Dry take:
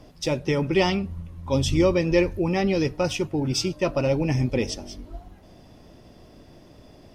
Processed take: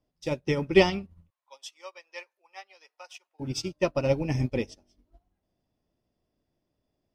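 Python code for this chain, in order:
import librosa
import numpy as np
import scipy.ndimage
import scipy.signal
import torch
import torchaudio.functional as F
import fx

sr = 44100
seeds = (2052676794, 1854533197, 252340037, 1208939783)

y = fx.highpass(x, sr, hz=740.0, slope=24, at=(1.3, 3.4))
y = fx.upward_expand(y, sr, threshold_db=-39.0, expansion=2.5)
y = y * librosa.db_to_amplitude(4.0)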